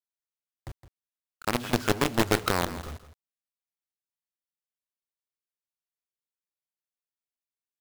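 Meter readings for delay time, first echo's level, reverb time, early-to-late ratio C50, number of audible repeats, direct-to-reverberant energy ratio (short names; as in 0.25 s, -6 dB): 0.164 s, -13.5 dB, none, none, 1, none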